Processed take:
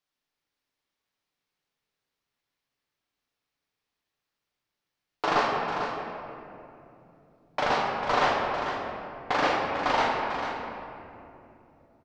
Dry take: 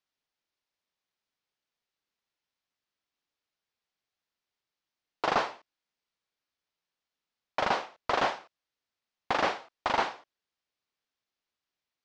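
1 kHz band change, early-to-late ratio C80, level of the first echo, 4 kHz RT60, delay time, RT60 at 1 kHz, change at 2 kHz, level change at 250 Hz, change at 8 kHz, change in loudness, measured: +5.0 dB, 1.0 dB, −9.0 dB, 1.5 s, 446 ms, 2.5 s, +4.5 dB, +6.5 dB, +2.5 dB, +2.5 dB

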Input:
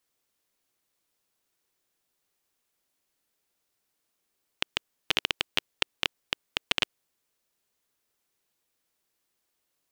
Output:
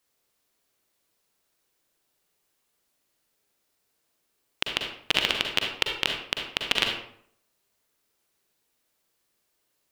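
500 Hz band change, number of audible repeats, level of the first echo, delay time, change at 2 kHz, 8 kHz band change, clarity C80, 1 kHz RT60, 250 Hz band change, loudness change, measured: +5.5 dB, no echo audible, no echo audible, no echo audible, +4.5 dB, +3.5 dB, 7.0 dB, 0.60 s, +5.0 dB, +4.0 dB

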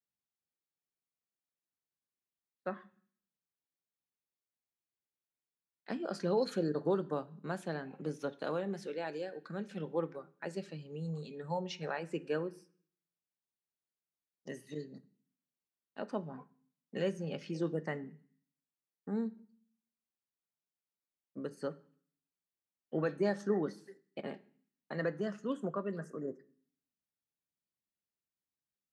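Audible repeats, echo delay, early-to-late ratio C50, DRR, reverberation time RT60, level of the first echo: no echo audible, no echo audible, 19.5 dB, 9.0 dB, 0.50 s, no echo audible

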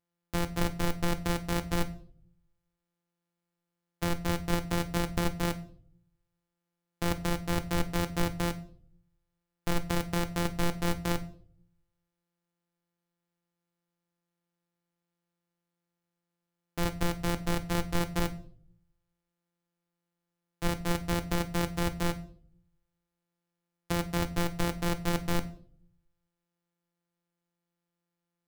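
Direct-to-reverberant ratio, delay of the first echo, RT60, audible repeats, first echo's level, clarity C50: 10.0 dB, no echo audible, 0.55 s, no echo audible, no echo audible, 16.0 dB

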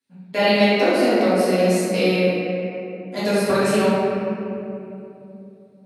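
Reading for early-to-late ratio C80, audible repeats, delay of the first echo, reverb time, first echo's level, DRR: −1.5 dB, no echo audible, no echo audible, 2.8 s, no echo audible, −12.5 dB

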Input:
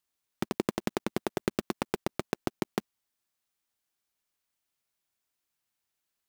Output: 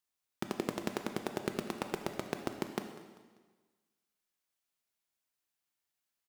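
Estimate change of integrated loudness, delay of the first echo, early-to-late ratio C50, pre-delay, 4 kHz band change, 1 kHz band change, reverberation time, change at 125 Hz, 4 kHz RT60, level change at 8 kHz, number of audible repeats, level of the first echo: −4.5 dB, 196 ms, 7.5 dB, 8 ms, −3.5 dB, −3.5 dB, 1.4 s, −5.5 dB, 1.3 s, −3.5 dB, 3, −18.5 dB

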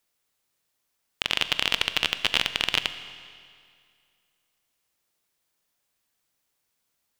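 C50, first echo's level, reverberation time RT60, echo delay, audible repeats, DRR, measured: 12.0 dB, no echo audible, 2.2 s, no echo audible, no echo audible, 11.0 dB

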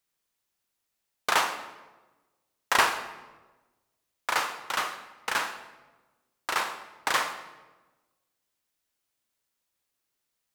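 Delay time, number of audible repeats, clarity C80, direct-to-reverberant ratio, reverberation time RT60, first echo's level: no echo audible, no echo audible, 11.0 dB, 8.0 dB, 1.2 s, no echo audible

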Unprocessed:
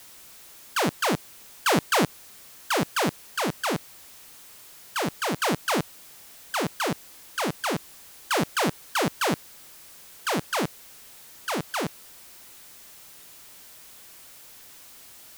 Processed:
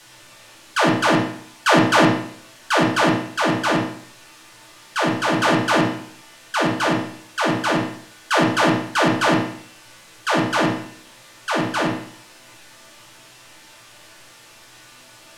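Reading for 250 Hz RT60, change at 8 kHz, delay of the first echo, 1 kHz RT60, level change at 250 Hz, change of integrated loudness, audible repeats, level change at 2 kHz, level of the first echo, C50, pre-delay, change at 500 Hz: 0.60 s, +1.5 dB, no echo audible, 0.60 s, +10.0 dB, +7.5 dB, no echo audible, +9.0 dB, no echo audible, 4.0 dB, 3 ms, +8.0 dB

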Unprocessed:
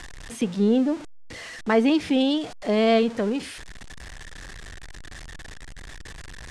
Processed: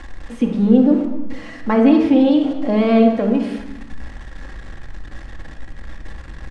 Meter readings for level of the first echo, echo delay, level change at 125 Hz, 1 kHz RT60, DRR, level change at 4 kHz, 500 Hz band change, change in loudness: −15.5 dB, 232 ms, can't be measured, 1.1 s, 1.0 dB, −4.0 dB, +4.5 dB, +7.5 dB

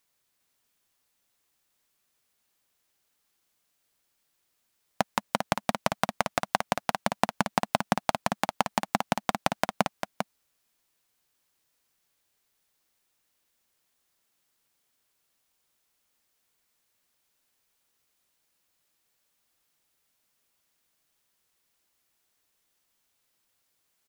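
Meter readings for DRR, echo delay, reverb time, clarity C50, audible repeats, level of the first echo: no reverb audible, 398 ms, no reverb audible, no reverb audible, 1, −6.5 dB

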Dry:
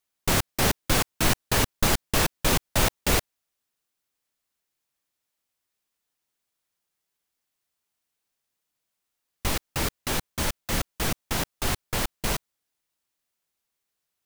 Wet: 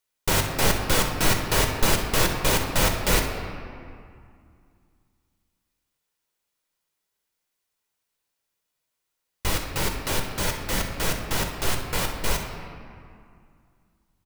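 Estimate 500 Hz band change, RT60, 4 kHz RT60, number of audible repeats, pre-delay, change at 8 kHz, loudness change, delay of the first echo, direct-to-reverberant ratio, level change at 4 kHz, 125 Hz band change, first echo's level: +3.0 dB, 2.3 s, 1.4 s, 1, 6 ms, +1.0 dB, +1.5 dB, 63 ms, 2.5 dB, +1.5 dB, +1.5 dB, −13.0 dB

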